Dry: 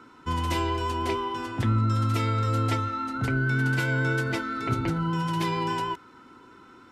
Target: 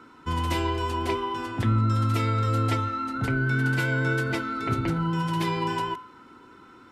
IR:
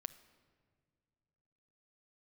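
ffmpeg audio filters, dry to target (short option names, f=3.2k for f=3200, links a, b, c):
-af "equalizer=f=6.1k:t=o:w=0.77:g=-2.5,bandreject=f=126.8:t=h:w=4,bandreject=f=253.6:t=h:w=4,bandreject=f=380.4:t=h:w=4,bandreject=f=507.2:t=h:w=4,bandreject=f=634:t=h:w=4,bandreject=f=760.8:t=h:w=4,bandreject=f=887.6:t=h:w=4,bandreject=f=1.0144k:t=h:w=4,bandreject=f=1.1412k:t=h:w=4,bandreject=f=1.268k:t=h:w=4,bandreject=f=1.3948k:t=h:w=4,bandreject=f=1.5216k:t=h:w=4,bandreject=f=1.6484k:t=h:w=4,bandreject=f=1.7752k:t=h:w=4,bandreject=f=1.902k:t=h:w=4,bandreject=f=2.0288k:t=h:w=4,bandreject=f=2.1556k:t=h:w=4,bandreject=f=2.2824k:t=h:w=4,bandreject=f=2.4092k:t=h:w=4,bandreject=f=2.536k:t=h:w=4,bandreject=f=2.6628k:t=h:w=4,bandreject=f=2.7896k:t=h:w=4,bandreject=f=2.9164k:t=h:w=4,bandreject=f=3.0432k:t=h:w=4,bandreject=f=3.17k:t=h:w=4,bandreject=f=3.2968k:t=h:w=4,bandreject=f=3.4236k:t=h:w=4,bandreject=f=3.5504k:t=h:w=4,bandreject=f=3.6772k:t=h:w=4,bandreject=f=3.804k:t=h:w=4,bandreject=f=3.9308k:t=h:w=4,volume=1dB"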